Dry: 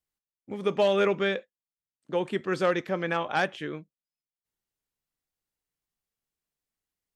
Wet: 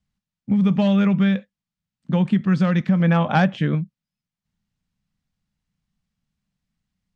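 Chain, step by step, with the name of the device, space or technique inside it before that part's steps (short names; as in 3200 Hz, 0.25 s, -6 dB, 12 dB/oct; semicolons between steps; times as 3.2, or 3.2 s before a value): jukebox (LPF 5800 Hz 12 dB/oct; resonant low shelf 270 Hz +11 dB, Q 3; compressor 4:1, threshold -22 dBFS, peak gain reduction 7.5 dB); 3–3.75 bell 520 Hz +7 dB 1.6 oct; gain +6.5 dB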